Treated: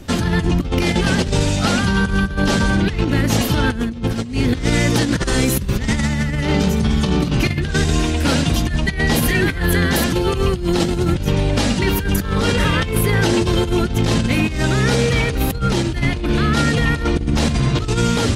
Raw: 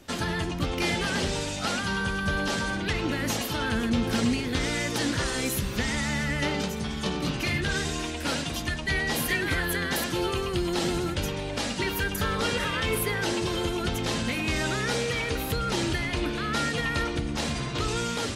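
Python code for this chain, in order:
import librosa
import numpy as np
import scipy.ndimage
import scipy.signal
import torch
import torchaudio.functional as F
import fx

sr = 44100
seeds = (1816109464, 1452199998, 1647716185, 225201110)

y = fx.low_shelf(x, sr, hz=260.0, db=12.0)
y = fx.over_compress(y, sr, threshold_db=-23.0, ratio=-0.5)
y = F.gain(torch.from_numpy(y), 6.5).numpy()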